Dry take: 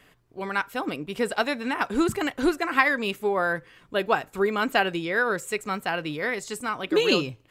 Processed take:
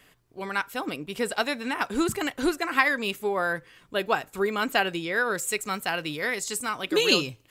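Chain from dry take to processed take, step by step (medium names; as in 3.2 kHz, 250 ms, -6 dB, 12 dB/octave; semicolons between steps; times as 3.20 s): treble shelf 3.4 kHz +7 dB, from 5.35 s +12 dB; trim -2.5 dB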